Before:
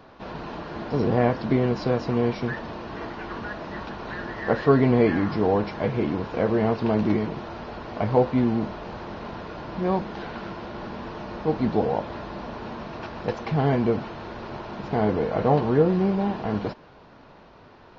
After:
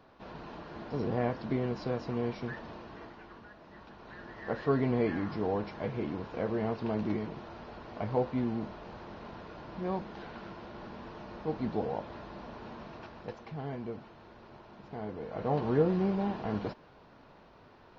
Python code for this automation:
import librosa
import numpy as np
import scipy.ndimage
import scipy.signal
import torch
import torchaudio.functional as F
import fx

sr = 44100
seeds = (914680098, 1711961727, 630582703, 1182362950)

y = fx.gain(x, sr, db=fx.line((2.75, -10.0), (3.53, -19.5), (4.73, -10.0), (12.89, -10.0), (13.55, -17.0), (15.16, -17.0), (15.7, -7.0)))